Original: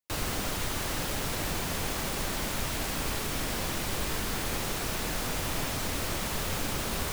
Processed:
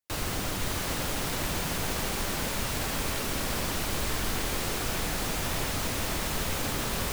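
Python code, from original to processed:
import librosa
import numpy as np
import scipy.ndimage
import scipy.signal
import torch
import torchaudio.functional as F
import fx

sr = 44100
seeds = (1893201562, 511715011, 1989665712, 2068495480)

y = x + fx.echo_split(x, sr, split_hz=340.0, low_ms=141, high_ms=566, feedback_pct=52, wet_db=-5.5, dry=0)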